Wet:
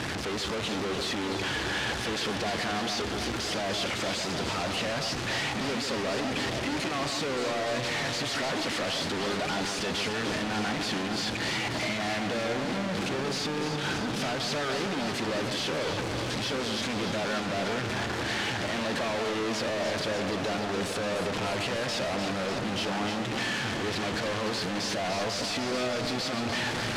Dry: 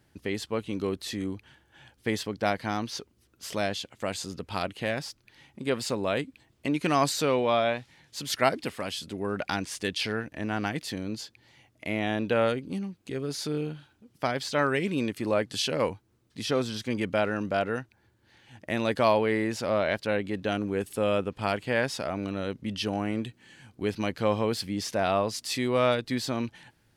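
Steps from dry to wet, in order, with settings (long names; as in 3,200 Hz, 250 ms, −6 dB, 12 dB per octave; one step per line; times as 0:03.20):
sign of each sample alone
low-pass filter 5,300 Hz 12 dB per octave
low-shelf EQ 120 Hz −12 dB
delay that swaps between a low-pass and a high-pass 149 ms, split 1,700 Hz, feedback 86%, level −6.5 dB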